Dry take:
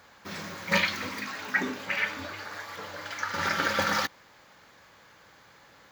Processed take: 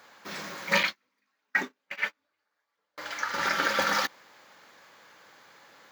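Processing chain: 0.83–2.98 gate -27 dBFS, range -42 dB; Bessel high-pass 260 Hz, order 2; gain +1 dB

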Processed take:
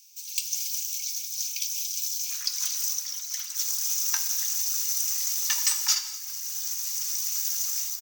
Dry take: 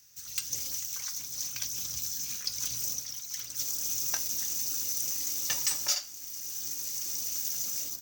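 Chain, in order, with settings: Chebyshev high-pass 2200 Hz, order 10, from 2.3 s 860 Hz; frequency-shifting echo 0.397 s, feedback 55%, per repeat -83 Hz, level -23 dB; non-linear reverb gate 0.26 s flat, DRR 11.5 dB; gain +5 dB

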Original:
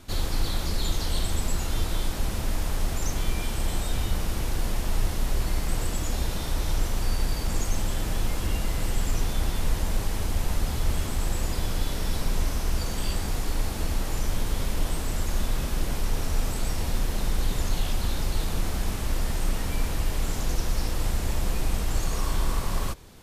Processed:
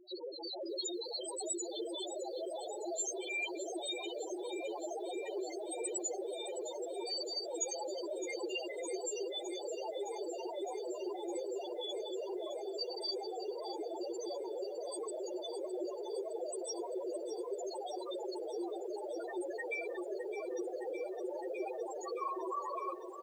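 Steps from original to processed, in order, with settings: Chebyshev band-pass 350–9500 Hz, order 5; AGC gain up to 5 dB; on a send: feedback echo 0.156 s, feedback 22%, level -16.5 dB; on the sum: overloaded stage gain 28.5 dB; loudest bins only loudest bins 2; lo-fi delay 0.612 s, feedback 80%, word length 12-bit, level -12 dB; gain +5.5 dB

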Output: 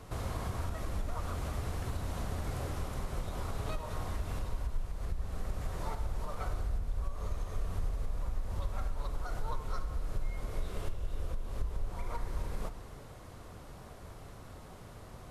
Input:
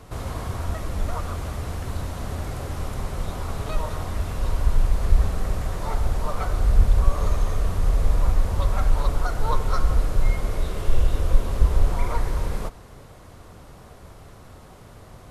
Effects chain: compressor, threshold -27 dBFS, peak gain reduction 18 dB; reverb RT60 1.2 s, pre-delay 13 ms, DRR 11.5 dB; gain -4.5 dB

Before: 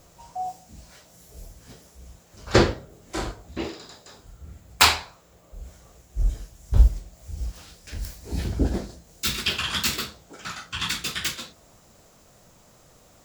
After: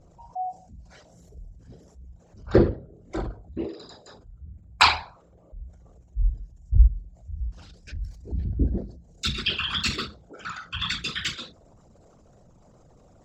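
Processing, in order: formant sharpening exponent 2; Bessel low-pass 6000 Hz, order 2

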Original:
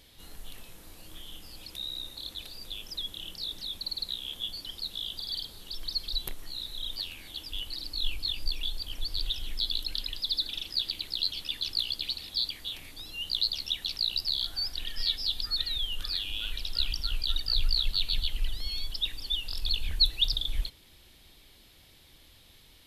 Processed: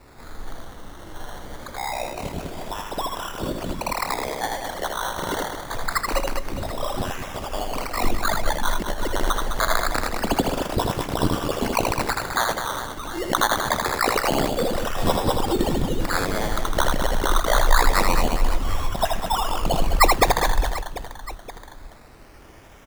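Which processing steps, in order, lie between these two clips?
decimation with a swept rate 14×, swing 60% 0.25 Hz; reverse bouncing-ball echo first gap 80 ms, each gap 1.6×, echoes 5; gain +7.5 dB

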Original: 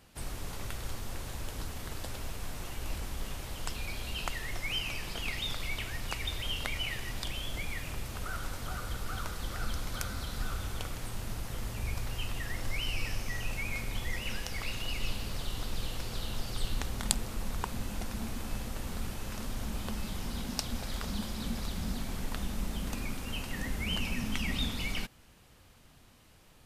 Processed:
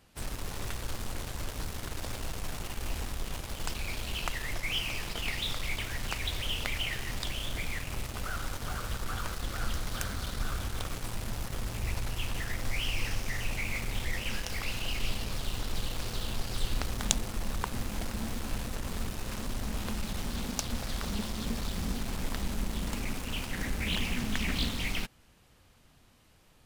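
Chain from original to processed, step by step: in parallel at -4 dB: requantised 6-bit, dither none; on the sum: Doppler distortion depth 0.64 ms; gain -2.5 dB

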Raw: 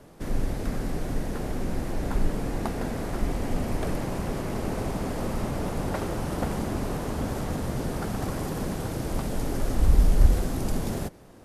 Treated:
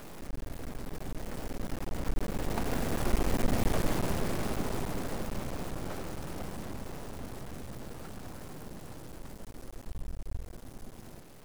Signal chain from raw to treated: zero-crossing step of -23.5 dBFS; Doppler pass-by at 3.51, 11 m/s, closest 9.2 m; half-wave rectifier

